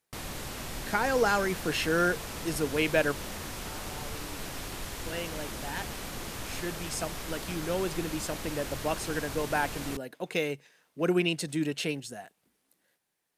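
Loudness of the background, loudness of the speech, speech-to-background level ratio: -38.0 LUFS, -31.5 LUFS, 6.5 dB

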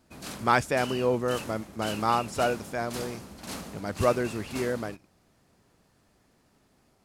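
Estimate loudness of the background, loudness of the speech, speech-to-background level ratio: -39.5 LUFS, -28.5 LUFS, 11.0 dB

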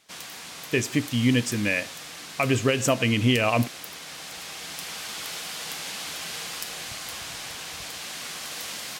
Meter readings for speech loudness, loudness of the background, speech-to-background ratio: -24.0 LUFS, -34.5 LUFS, 10.5 dB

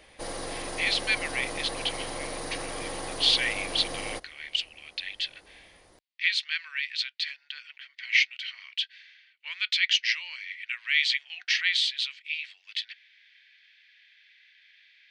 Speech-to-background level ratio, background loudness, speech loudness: 8.0 dB, -35.5 LUFS, -27.5 LUFS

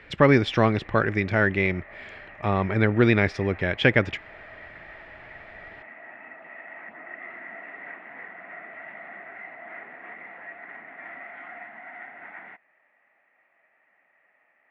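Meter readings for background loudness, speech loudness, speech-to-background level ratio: -42.0 LUFS, -22.5 LUFS, 19.5 dB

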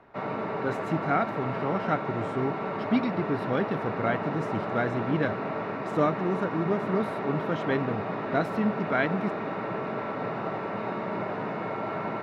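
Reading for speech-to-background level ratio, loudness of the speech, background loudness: 2.5 dB, -30.0 LUFS, -32.5 LUFS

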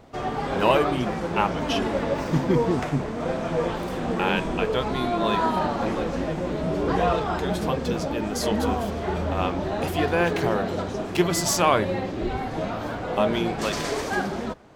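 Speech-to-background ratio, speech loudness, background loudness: -0.5 dB, -27.5 LUFS, -27.0 LUFS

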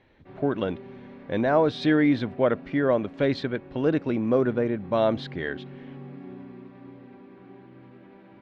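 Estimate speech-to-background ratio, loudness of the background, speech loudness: 19.0 dB, -44.0 LUFS, -25.0 LUFS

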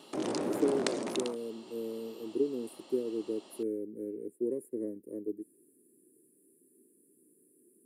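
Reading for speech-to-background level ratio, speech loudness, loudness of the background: -2.0 dB, -36.5 LUFS, -34.5 LUFS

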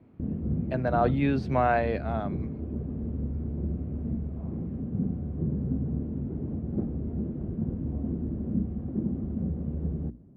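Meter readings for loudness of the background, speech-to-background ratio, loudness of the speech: -32.5 LUFS, 5.0 dB, -27.5 LUFS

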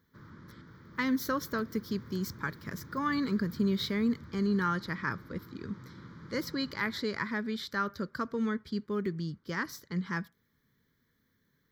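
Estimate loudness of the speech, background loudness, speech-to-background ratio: -33.5 LUFS, -50.5 LUFS, 17.0 dB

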